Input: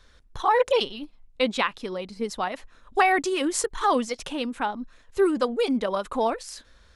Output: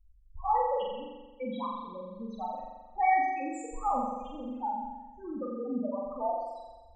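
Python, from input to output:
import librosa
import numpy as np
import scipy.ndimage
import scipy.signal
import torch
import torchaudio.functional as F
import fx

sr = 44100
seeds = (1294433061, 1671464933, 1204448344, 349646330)

y = fx.spec_topn(x, sr, count=4)
y = fx.fixed_phaser(y, sr, hz=1500.0, stages=6)
y = fx.room_flutter(y, sr, wall_m=7.5, rt60_s=1.2)
y = y * librosa.db_to_amplitude(-5.0)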